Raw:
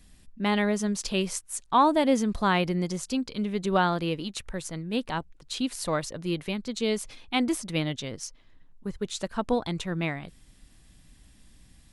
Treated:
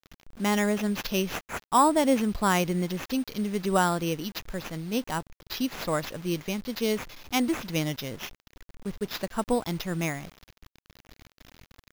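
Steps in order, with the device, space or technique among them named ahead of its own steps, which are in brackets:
early 8-bit sampler (sample-rate reduction 8,800 Hz, jitter 0%; bit reduction 8 bits)

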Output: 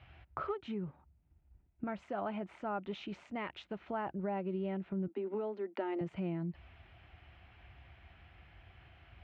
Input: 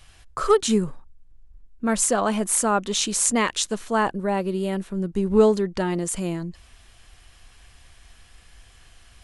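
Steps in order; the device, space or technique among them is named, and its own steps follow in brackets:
0:05.07–0:06.01: Butterworth high-pass 220 Hz 96 dB per octave
bass amplifier (downward compressor 5 to 1, threshold −32 dBFS, peak gain reduction 18 dB; loudspeaker in its box 64–2,300 Hz, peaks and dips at 230 Hz −8 dB, 470 Hz −10 dB, 1,100 Hz −9 dB, 1,700 Hz −8 dB)
level +1 dB

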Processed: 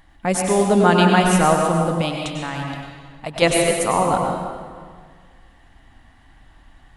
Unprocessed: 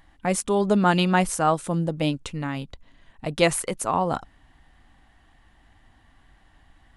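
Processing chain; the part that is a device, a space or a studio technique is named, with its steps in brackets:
stairwell (convolution reverb RT60 1.7 s, pre-delay 91 ms, DRR 0 dB)
0:02.01–0:03.42: low shelf with overshoot 570 Hz −6 dB, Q 1.5
level +3 dB

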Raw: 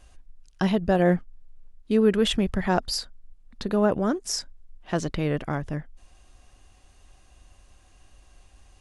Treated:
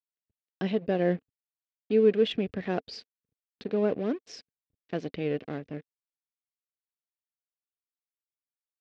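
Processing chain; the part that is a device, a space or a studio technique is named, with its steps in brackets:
blown loudspeaker (dead-zone distortion −37.5 dBFS; loudspeaker in its box 130–4,500 Hz, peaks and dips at 270 Hz +5 dB, 450 Hz +8 dB, 930 Hz −10 dB, 1,300 Hz −6 dB, 2,500 Hz +4 dB)
level −6 dB

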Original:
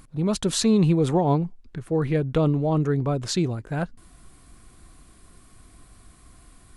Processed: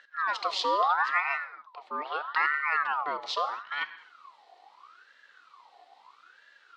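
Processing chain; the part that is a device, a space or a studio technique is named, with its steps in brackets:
0:01.20–0:02.28: parametric band 200 Hz −6.5 dB 2.3 octaves
reverb whose tail is shaped and stops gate 300 ms falling, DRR 11 dB
voice changer toy (ring modulator whose carrier an LFO sweeps 1,200 Hz, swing 40%, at 0.77 Hz; loudspeaker in its box 600–4,400 Hz, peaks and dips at 610 Hz −6 dB, 900 Hz −4 dB, 1,600 Hz −6 dB, 2,400 Hz −4 dB, 4,100 Hz +6 dB)

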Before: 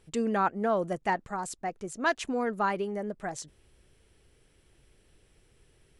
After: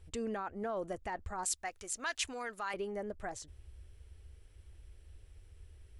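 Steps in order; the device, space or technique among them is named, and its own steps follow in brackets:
car stereo with a boomy subwoofer (low shelf with overshoot 110 Hz +11.5 dB, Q 3; brickwall limiter −26 dBFS, peak gain reduction 11 dB)
0:01.44–0:02.74: tilt shelving filter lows −10 dB
level −4 dB

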